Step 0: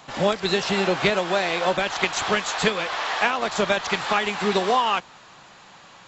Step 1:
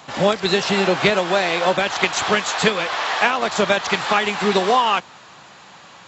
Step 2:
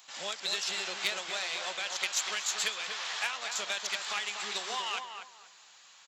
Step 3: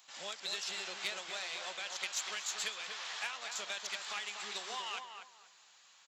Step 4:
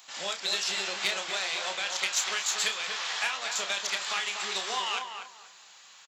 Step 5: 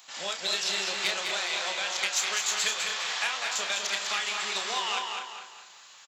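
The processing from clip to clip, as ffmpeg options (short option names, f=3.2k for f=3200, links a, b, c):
-af "highpass=67,volume=4dB"
-filter_complex "[0:a]aeval=exprs='0.891*(cos(1*acos(clip(val(0)/0.891,-1,1)))-cos(1*PI/2))+0.0398*(cos(6*acos(clip(val(0)/0.891,-1,1)))-cos(6*PI/2))':c=same,aderivative,asplit=2[a][b];[b]adelay=242,lowpass=f=1.6k:p=1,volume=-5dB,asplit=2[c][d];[d]adelay=242,lowpass=f=1.6k:p=1,volume=0.27,asplit=2[e][f];[f]adelay=242,lowpass=f=1.6k:p=1,volume=0.27,asplit=2[g][h];[h]adelay=242,lowpass=f=1.6k:p=1,volume=0.27[i];[a][c][e][g][i]amix=inputs=5:normalize=0,volume=-3.5dB"
-af "asoftclip=type=tanh:threshold=-15.5dB,volume=-6dB"
-filter_complex "[0:a]asplit=2[a][b];[b]adelay=31,volume=-8dB[c];[a][c]amix=inputs=2:normalize=0,volume=9dB"
-af "aecho=1:1:203|406|609|812:0.531|0.191|0.0688|0.0248"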